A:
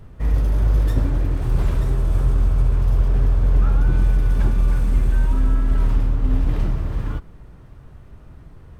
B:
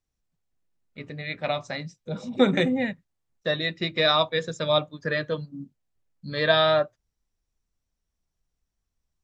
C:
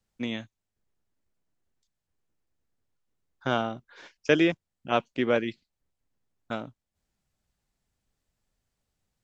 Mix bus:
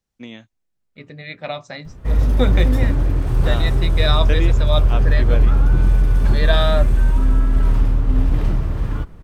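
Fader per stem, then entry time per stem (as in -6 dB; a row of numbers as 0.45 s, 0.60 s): +2.5 dB, -0.5 dB, -4.0 dB; 1.85 s, 0.00 s, 0.00 s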